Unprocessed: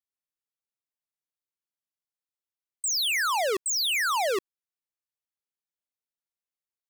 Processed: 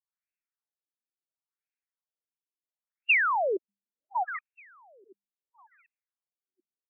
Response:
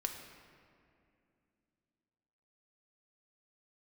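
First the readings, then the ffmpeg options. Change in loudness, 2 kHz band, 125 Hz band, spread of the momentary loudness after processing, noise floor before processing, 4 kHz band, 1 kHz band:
-2.0 dB, +0.5 dB, n/a, 14 LU, under -85 dBFS, under -15 dB, -1.0 dB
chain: -af "equalizer=f=2.7k:t=o:w=0.77:g=7.5,bandreject=f=50:t=h:w=6,bandreject=f=100:t=h:w=6,bandreject=f=150:t=h:w=6,bandreject=f=200:t=h:w=6,aecho=1:1:737|1474|2211:0.0631|0.0297|0.0139,afftfilt=real='re*between(b*sr/1024,260*pow(2000/260,0.5+0.5*sin(2*PI*0.72*pts/sr))/1.41,260*pow(2000/260,0.5+0.5*sin(2*PI*0.72*pts/sr))*1.41)':imag='im*between(b*sr/1024,260*pow(2000/260,0.5+0.5*sin(2*PI*0.72*pts/sr))/1.41,260*pow(2000/260,0.5+0.5*sin(2*PI*0.72*pts/sr))*1.41)':win_size=1024:overlap=0.75"

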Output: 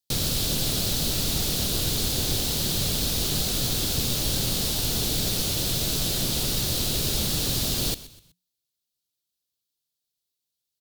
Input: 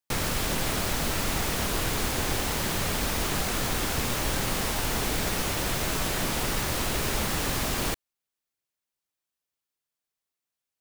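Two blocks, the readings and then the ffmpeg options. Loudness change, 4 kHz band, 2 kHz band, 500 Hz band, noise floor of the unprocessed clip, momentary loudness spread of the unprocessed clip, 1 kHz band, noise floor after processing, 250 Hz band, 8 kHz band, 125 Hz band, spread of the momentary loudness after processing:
+3.5 dB, +6.0 dB, -6.5 dB, -2.0 dB, under -85 dBFS, 0 LU, -8.0 dB, -83 dBFS, +1.0 dB, +4.5 dB, +3.5 dB, 0 LU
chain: -filter_complex "[0:a]equalizer=f=125:t=o:w=1:g=5,equalizer=f=1k:t=o:w=1:g=-9,equalizer=f=2k:t=o:w=1:g=-10,equalizer=f=4k:t=o:w=1:g=10,equalizer=f=16k:t=o:w=1:g=6,asplit=4[a][b][c][d];[b]adelay=125,afreqshift=-61,volume=-16.5dB[e];[c]adelay=250,afreqshift=-122,volume=-24.9dB[f];[d]adelay=375,afreqshift=-183,volume=-33.3dB[g];[a][e][f][g]amix=inputs=4:normalize=0"

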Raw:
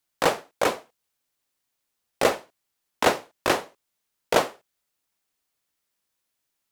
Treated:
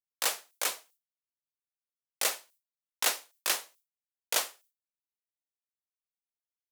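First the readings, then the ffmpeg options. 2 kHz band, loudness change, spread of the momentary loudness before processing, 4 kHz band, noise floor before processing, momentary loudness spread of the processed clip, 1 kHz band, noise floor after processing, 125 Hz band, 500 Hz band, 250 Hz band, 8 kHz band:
-7.5 dB, -5.5 dB, 7 LU, -1.5 dB, -80 dBFS, 7 LU, -13.5 dB, under -85 dBFS, under -25 dB, -18.5 dB, -23.5 dB, +4.0 dB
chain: -af "agate=range=-33dB:threshold=-47dB:ratio=3:detection=peak,aderivative,volume=4dB"

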